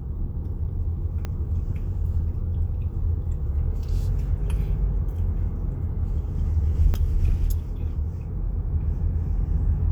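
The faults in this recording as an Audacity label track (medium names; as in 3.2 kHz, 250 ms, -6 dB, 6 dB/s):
1.250000	1.250000	pop -17 dBFS
6.940000	6.950000	dropout 5.4 ms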